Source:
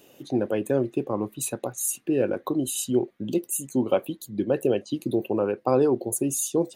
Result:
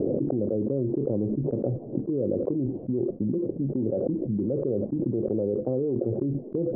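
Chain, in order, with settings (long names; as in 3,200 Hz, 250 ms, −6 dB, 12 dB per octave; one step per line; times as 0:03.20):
Butterworth low-pass 530 Hz 36 dB per octave
dynamic equaliser 360 Hz, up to −6 dB, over −33 dBFS, Q 0.81
envelope flattener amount 100%
level −2.5 dB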